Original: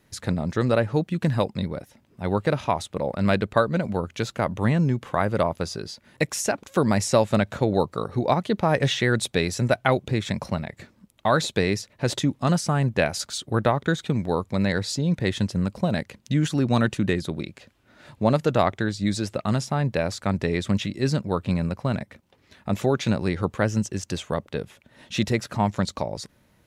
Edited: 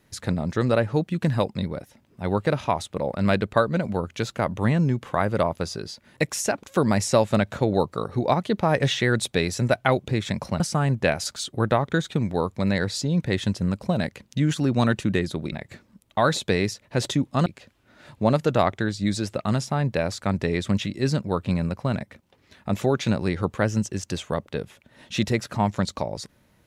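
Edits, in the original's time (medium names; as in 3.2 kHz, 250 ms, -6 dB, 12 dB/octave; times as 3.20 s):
10.60–12.54 s: move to 17.46 s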